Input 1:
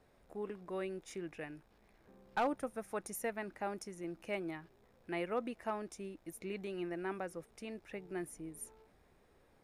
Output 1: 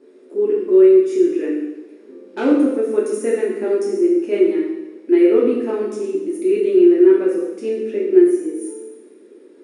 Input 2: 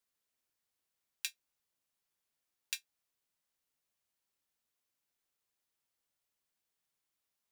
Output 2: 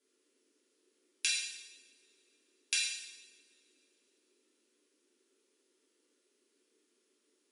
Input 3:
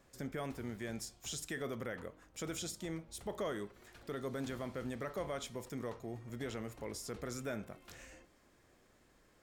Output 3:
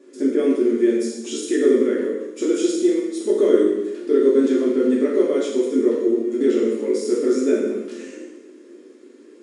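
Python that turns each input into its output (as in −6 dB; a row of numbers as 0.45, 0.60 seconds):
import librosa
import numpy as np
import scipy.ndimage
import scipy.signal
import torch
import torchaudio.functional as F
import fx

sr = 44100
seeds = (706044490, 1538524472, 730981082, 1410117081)

y = fx.brickwall_bandpass(x, sr, low_hz=210.0, high_hz=11000.0)
y = fx.low_shelf_res(y, sr, hz=550.0, db=11.0, q=3.0)
y = fx.rev_double_slope(y, sr, seeds[0], early_s=0.97, late_s=3.3, knee_db=-26, drr_db=-6.5)
y = y * 10.0 ** (4.0 / 20.0)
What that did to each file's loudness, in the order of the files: +25.5, +9.0, +23.5 LU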